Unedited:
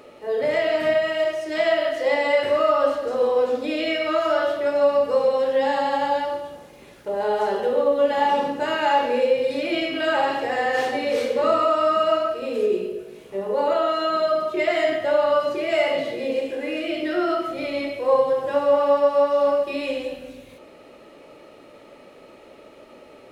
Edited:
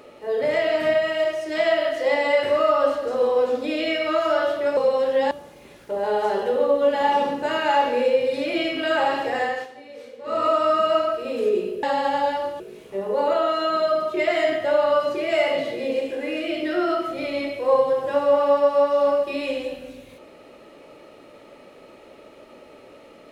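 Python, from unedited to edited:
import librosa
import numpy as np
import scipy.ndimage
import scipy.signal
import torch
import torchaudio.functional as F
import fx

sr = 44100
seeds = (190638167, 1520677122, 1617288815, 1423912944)

y = fx.edit(x, sr, fx.cut(start_s=4.77, length_s=0.4),
    fx.move(start_s=5.71, length_s=0.77, to_s=13.0),
    fx.fade_down_up(start_s=10.59, length_s=1.06, db=-18.0, fade_s=0.25), tone=tone)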